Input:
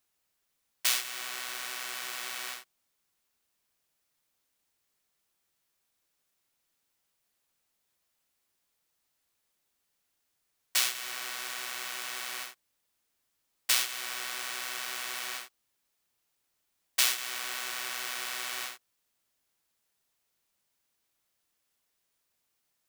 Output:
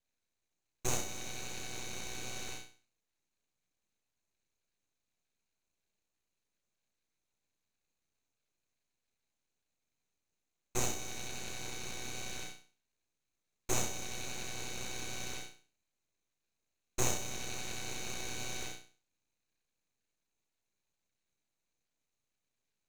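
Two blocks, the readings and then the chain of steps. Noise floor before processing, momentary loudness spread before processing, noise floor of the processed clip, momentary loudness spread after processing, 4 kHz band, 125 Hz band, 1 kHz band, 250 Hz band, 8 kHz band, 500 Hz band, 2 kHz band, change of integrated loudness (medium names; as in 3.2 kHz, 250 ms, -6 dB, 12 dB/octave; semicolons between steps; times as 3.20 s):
-79 dBFS, 12 LU, under -85 dBFS, 11 LU, -10.0 dB, no reading, -4.5 dB, +11.5 dB, -4.0 dB, +6.5 dB, -9.5 dB, -7.5 dB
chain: two resonant band-passes 1.6 kHz, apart 2 oct; flutter echo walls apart 5.7 m, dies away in 0.41 s; full-wave rectifier; trim +6 dB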